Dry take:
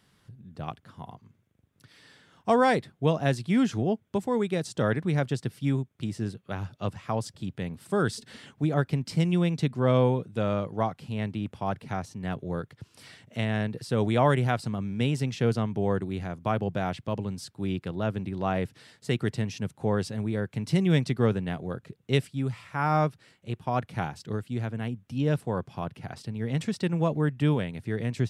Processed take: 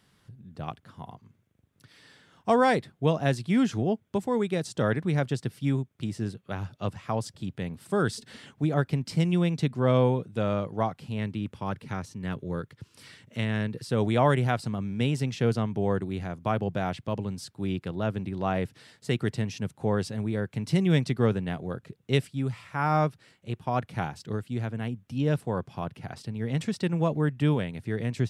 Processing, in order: 11.19–13.91 s: peaking EQ 710 Hz -10 dB 0.31 oct

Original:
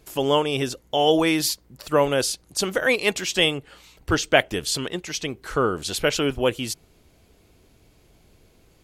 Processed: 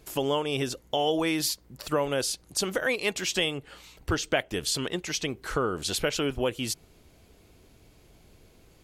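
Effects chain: compression 2.5:1, threshold -26 dBFS, peak gain reduction 10.5 dB

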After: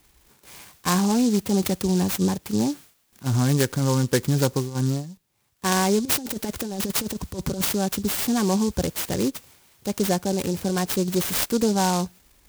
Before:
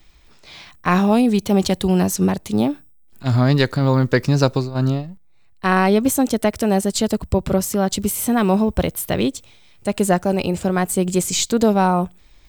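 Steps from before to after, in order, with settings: single-diode clipper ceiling -6.5 dBFS; comb of notches 650 Hz; 6.05–7.73 s: compressor with a negative ratio -23 dBFS, ratio -0.5; treble shelf 11 kHz +9 dB; delay time shaken by noise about 5.6 kHz, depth 0.084 ms; trim -3 dB

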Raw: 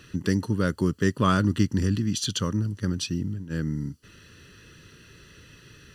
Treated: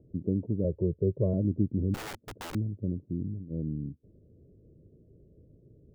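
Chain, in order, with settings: Chebyshev low-pass 650 Hz, order 5; 0.64–1.34 s: comb 2 ms, depth 90%; 1.94–2.55 s: integer overflow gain 30.5 dB; trim -4 dB

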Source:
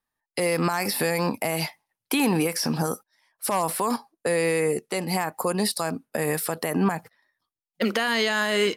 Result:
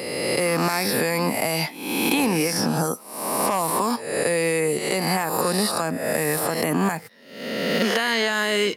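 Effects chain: reverse spectral sustain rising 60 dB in 0.92 s; three bands compressed up and down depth 70%

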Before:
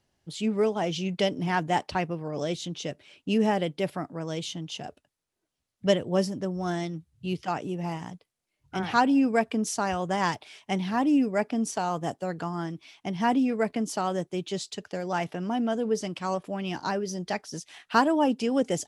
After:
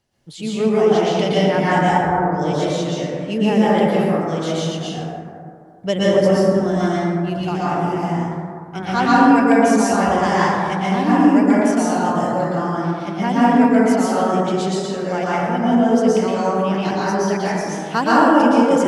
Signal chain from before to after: 1.82–2.32 s: brick-wall FIR low-pass 1.6 kHz; plate-style reverb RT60 2.3 s, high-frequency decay 0.3×, pre-delay 105 ms, DRR -9 dB; trim +1 dB

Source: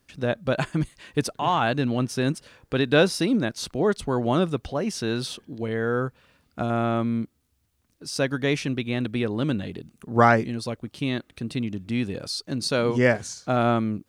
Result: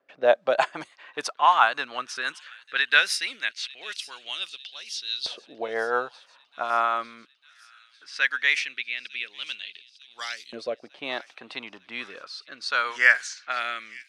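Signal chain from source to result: level-controlled noise filter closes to 1.7 kHz, open at -16.5 dBFS; rotary cabinet horn 6 Hz, later 0.6 Hz, at 5.95 s; feedback echo behind a high-pass 900 ms, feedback 64%, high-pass 3.3 kHz, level -16 dB; LFO high-pass saw up 0.19 Hz 600–4000 Hz; trim +4 dB

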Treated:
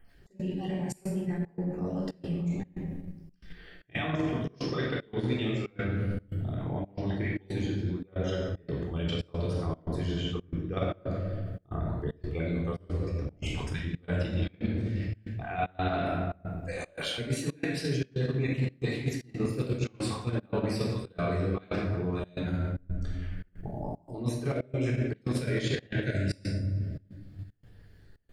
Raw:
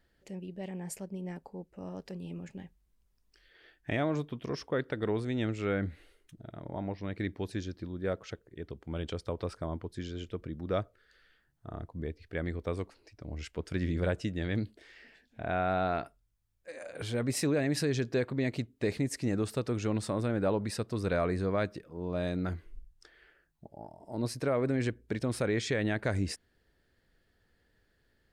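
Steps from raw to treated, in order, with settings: random holes in the spectrogram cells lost 30%; bass shelf 100 Hz +6.5 dB; simulated room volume 1100 m³, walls mixed, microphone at 3.7 m; in parallel at +1 dB: level held to a coarse grid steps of 22 dB; on the sum: dynamic bell 3.2 kHz, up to +7 dB, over -45 dBFS, Q 1.1; reverse; compression 6:1, threshold -27 dBFS, peak gain reduction 16 dB; reverse; trance gate "xx.xxxx.x" 114 bpm -24 dB

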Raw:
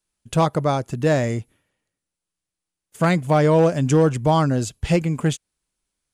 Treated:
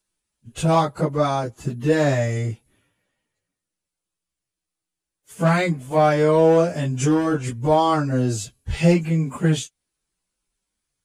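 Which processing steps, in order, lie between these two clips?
plain phase-vocoder stretch 1.8×; trim +2.5 dB

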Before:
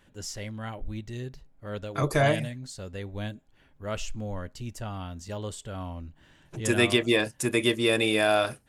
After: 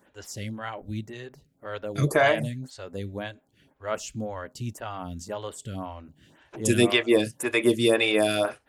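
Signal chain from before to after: high-pass 82 Hz; lamp-driven phase shifter 1.9 Hz; trim +5.5 dB

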